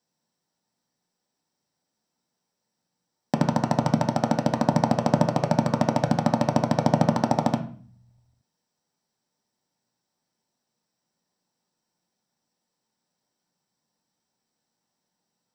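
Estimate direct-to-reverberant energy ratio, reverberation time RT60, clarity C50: 3.0 dB, 0.45 s, 10.5 dB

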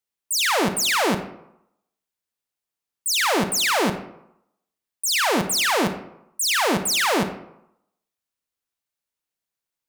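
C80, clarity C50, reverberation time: 12.0 dB, 9.5 dB, 0.80 s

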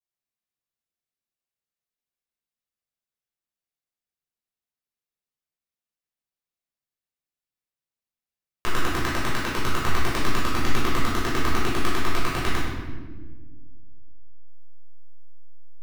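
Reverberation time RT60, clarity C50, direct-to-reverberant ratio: 1.4 s, 0.0 dB, -8.5 dB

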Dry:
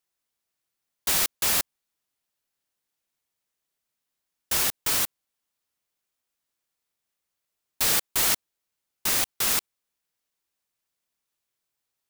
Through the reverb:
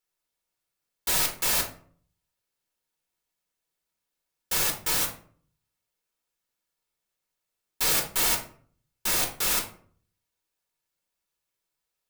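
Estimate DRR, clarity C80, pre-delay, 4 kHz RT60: 0.0 dB, 13.5 dB, 4 ms, 0.30 s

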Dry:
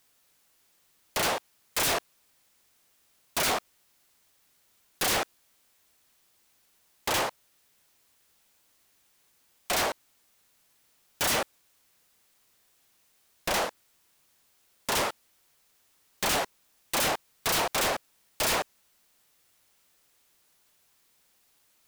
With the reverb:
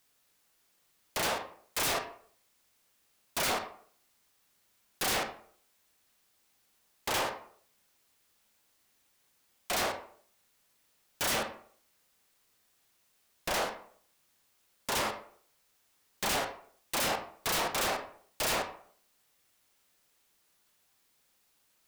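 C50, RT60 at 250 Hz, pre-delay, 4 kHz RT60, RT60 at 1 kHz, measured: 9.5 dB, 0.55 s, 25 ms, 0.35 s, 0.50 s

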